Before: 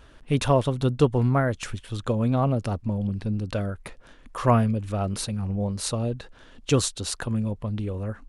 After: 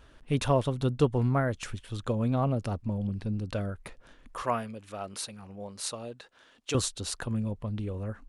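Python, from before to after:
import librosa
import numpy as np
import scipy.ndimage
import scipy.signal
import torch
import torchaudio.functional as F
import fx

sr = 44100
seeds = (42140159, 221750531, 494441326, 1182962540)

y = fx.highpass(x, sr, hz=720.0, slope=6, at=(4.42, 6.75))
y = y * 10.0 ** (-4.5 / 20.0)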